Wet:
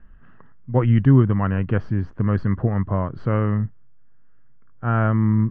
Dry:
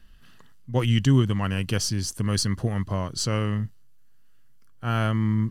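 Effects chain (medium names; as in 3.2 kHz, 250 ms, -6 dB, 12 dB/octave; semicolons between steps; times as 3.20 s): low-pass 1.7 kHz 24 dB/octave; trim +5 dB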